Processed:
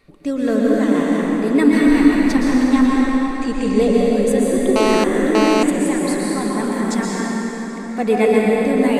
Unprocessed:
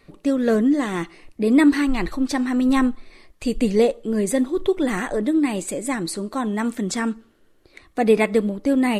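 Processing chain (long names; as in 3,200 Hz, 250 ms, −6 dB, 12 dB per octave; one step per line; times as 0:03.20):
0:02.67–0:03.79: low-pass filter 8,800 Hz 24 dB per octave
dense smooth reverb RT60 4.7 s, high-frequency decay 0.6×, pre-delay 105 ms, DRR −5 dB
0:04.76–0:05.63: phone interference −15 dBFS
level −2 dB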